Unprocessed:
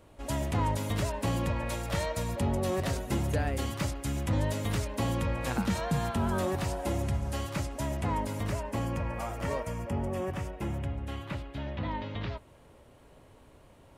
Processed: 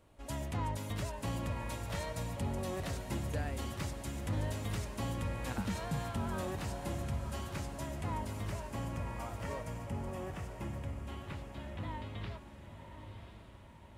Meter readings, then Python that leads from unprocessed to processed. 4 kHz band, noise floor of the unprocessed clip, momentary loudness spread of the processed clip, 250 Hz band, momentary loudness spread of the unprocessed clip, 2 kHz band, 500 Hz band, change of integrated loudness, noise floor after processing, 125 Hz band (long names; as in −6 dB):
−6.5 dB, −57 dBFS, 8 LU, −7.5 dB, 6 LU, −6.5 dB, −8.5 dB, −7.0 dB, −54 dBFS, −6.5 dB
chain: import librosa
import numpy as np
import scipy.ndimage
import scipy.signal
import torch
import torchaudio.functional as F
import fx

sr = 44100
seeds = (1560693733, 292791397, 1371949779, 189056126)

p1 = fx.peak_eq(x, sr, hz=430.0, db=-2.5, octaves=1.6)
p2 = p1 + fx.echo_diffused(p1, sr, ms=1041, feedback_pct=51, wet_db=-9, dry=0)
y = p2 * 10.0 ** (-7.0 / 20.0)